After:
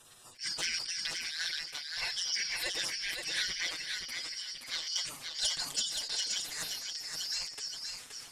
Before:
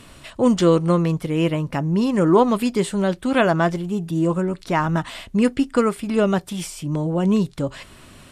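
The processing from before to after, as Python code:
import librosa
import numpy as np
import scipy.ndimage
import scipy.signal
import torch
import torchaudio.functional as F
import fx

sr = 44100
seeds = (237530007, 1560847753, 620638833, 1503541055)

y = fx.band_shuffle(x, sr, order='4321')
y = fx.peak_eq(y, sr, hz=fx.steps((0.0, 2200.0), (4.87, 6600.0)), db=11.5, octaves=0.53)
y = fx.spec_gate(y, sr, threshold_db=-20, keep='weak')
y = fx.env_flanger(y, sr, rest_ms=8.5, full_db=-10.5)
y = fx.echo_feedback(y, sr, ms=524, feedback_pct=19, wet_db=-5.0)
y = fx.sustainer(y, sr, db_per_s=81.0)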